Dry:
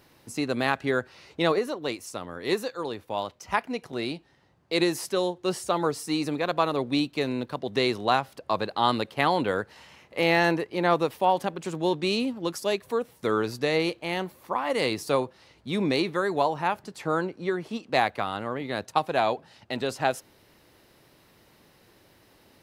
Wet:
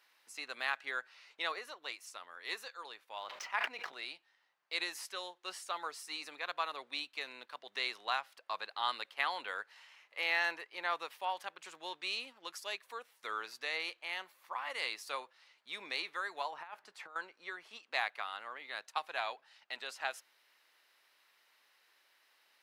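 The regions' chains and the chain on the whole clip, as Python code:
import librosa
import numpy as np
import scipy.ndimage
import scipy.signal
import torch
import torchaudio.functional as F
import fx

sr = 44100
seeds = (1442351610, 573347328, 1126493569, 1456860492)

y = fx.chain(x, sr, fx.median_filter(points=5),
    fx.high_shelf(hz=4500.0, db=-8.0),
    fx.sustainer(db_per_s=28.0), at=(3.18, 3.94))
y = fx.chain(y, sr, fx.high_shelf(hz=2400.0, db=-8.5),
    fx.over_compress(threshold_db=-31.0, ratio=-0.5), at=(16.51, 17.16))
y = scipy.signal.sosfilt(scipy.signal.butter(2, 1500.0, 'highpass', fs=sr, output='sos'), y)
y = fx.high_shelf(y, sr, hz=4000.0, db=-9.5)
y = F.gain(torch.from_numpy(y), -3.0).numpy()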